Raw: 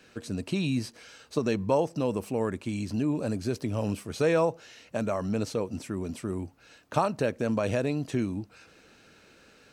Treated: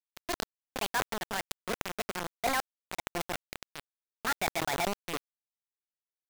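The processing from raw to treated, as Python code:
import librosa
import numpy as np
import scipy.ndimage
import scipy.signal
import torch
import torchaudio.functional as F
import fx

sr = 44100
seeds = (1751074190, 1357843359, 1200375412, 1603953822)

y = fx.speed_glide(x, sr, from_pct=184, to_pct=125)
y = F.preemphasis(torch.from_numpy(y), 0.9).numpy()
y = fx.vibrato(y, sr, rate_hz=7.6, depth_cents=18.0)
y = fx.high_shelf(y, sr, hz=5400.0, db=-6.5)
y = fx.small_body(y, sr, hz=(700.0, 1400.0, 3500.0), ring_ms=95, db=11)
y = fx.filter_lfo_lowpass(y, sr, shape='square', hz=7.5, low_hz=470.0, high_hz=2400.0, q=2.1)
y = fx.notch(y, sr, hz=490.0, q=12.0)
y = fx.quant_companded(y, sr, bits=2)
y = fx.sustainer(y, sr, db_per_s=39.0)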